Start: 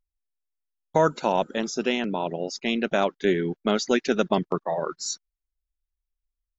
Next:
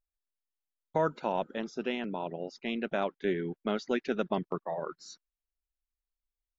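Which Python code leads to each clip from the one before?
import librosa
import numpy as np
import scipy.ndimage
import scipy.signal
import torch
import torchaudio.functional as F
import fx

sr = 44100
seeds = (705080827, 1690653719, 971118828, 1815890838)

y = scipy.signal.sosfilt(scipy.signal.butter(2, 3300.0, 'lowpass', fs=sr, output='sos'), x)
y = y * 10.0 ** (-8.0 / 20.0)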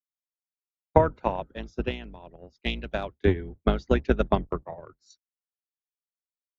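y = fx.octave_divider(x, sr, octaves=2, level_db=3.0)
y = fx.transient(y, sr, attack_db=11, sustain_db=-1)
y = fx.band_widen(y, sr, depth_pct=100)
y = y * 10.0 ** (-3.0 / 20.0)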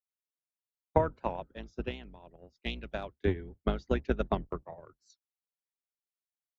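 y = fx.record_warp(x, sr, rpm=78.0, depth_cents=100.0)
y = y * 10.0 ** (-7.0 / 20.0)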